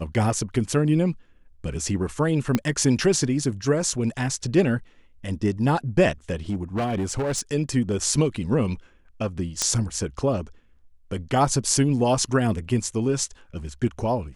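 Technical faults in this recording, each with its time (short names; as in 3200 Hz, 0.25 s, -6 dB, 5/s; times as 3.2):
2.55 pop -7 dBFS
6.5–7.41 clipped -21.5 dBFS
9.62 pop -7 dBFS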